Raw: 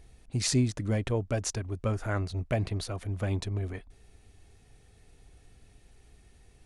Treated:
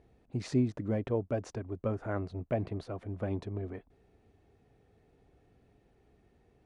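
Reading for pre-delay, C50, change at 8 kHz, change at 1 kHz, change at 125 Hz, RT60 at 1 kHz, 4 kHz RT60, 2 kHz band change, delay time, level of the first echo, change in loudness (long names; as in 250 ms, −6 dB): no reverb audible, no reverb audible, below −20 dB, −3.5 dB, −6.0 dB, no reverb audible, no reverb audible, −8.0 dB, no echo audible, no echo audible, −4.0 dB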